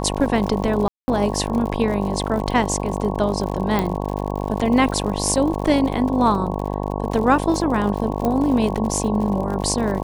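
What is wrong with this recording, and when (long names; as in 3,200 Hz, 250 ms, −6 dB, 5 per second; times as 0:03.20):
mains buzz 50 Hz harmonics 22 −25 dBFS
surface crackle 78 per second −28 dBFS
0:00.88–0:01.08: drop-out 200 ms
0:03.79: click −8 dBFS
0:08.25: click −10 dBFS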